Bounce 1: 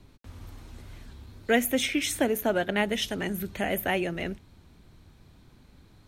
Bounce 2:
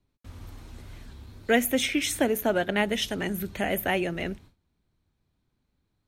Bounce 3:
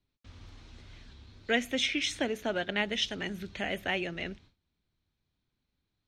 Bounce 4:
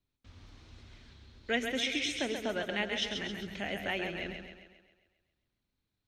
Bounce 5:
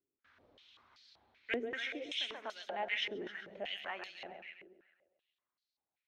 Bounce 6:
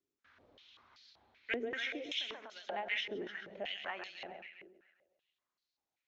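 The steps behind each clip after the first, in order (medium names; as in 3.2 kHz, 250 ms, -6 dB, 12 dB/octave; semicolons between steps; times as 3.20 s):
gate with hold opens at -42 dBFS; trim +1 dB
FFT filter 930 Hz 0 dB, 3.6 kHz +8 dB, 6 kHz +4 dB, 14 kHz -23 dB; trim -7.5 dB
two-band feedback delay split 320 Hz, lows 103 ms, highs 134 ms, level -6 dB; trim -3.5 dB
step-sequenced band-pass 5.2 Hz 380–4600 Hz; trim +5.5 dB
resampled via 16 kHz; endings held to a fixed fall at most 120 dB/s; trim +1.5 dB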